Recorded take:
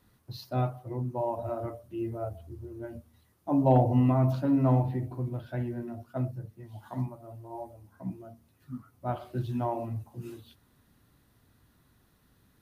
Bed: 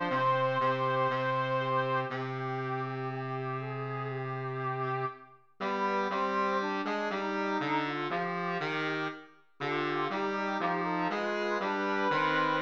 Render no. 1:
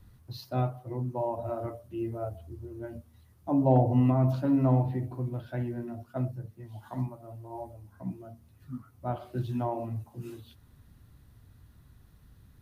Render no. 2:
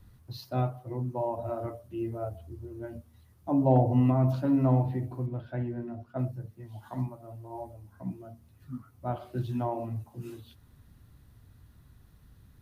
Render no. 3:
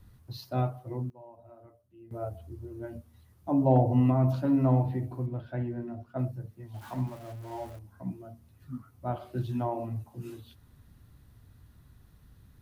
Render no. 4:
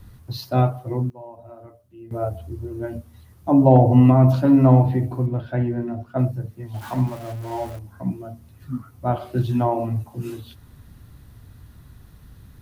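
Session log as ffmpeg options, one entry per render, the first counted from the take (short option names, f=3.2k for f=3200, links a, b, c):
-filter_complex "[0:a]acrossover=split=130|870[a][b][c];[a]acompressor=mode=upward:threshold=-43dB:ratio=2.5[d];[c]alimiter=level_in=9dB:limit=-24dB:level=0:latency=1:release=284,volume=-9dB[e];[d][b][e]amix=inputs=3:normalize=0"
-filter_complex "[0:a]asettb=1/sr,asplit=3[a][b][c];[a]atrim=end=5.264[d];[b]atrim=start=5.26:end=6.19,asetpts=PTS-STARTPTS,afade=t=in:d=0.004:c=qsin,afade=t=out:st=0.926:d=0.004:c=qsin,lowpass=f=2.4k:p=1[e];[c]atrim=start=6.186[f];[d][e]acrossfade=d=0.004:c1=hsin:c2=qsin[g];[g][f]acrossfade=d=0.004:c1=qsin:c2=hsin"
-filter_complex "[0:a]asettb=1/sr,asplit=3[a][b][c];[a]atrim=end=6.744[d];[b]atrim=start=6.74:end=7.79,asetpts=PTS-STARTPTS,afade=t=in:d=0.004:c=qsin,afade=t=out:st=1.046:d=0.004:c=qsin,aeval=exprs='val(0)+0.5*0.00531*sgn(val(0))':c=same[e];[c]atrim=start=7.786[f];[d][e]acrossfade=d=0.004:c1=hsin:c2=qsin[g];[g][f]acrossfade=d=0.004:c1=qsin:c2=hsin,asplit=3[h][i][j];[h]atrim=end=1.1,asetpts=PTS-STARTPTS,afade=t=out:st=0.75:d=0.35:c=log:silence=0.112202[k];[i]atrim=start=1.1:end=2.11,asetpts=PTS-STARTPTS,volume=-19dB[l];[j]atrim=start=2.11,asetpts=PTS-STARTPTS,afade=t=in:d=0.35:c=log:silence=0.112202[m];[k][l][m]concat=n=3:v=0:a=1"
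-af "volume=10.5dB,alimiter=limit=-3dB:level=0:latency=1"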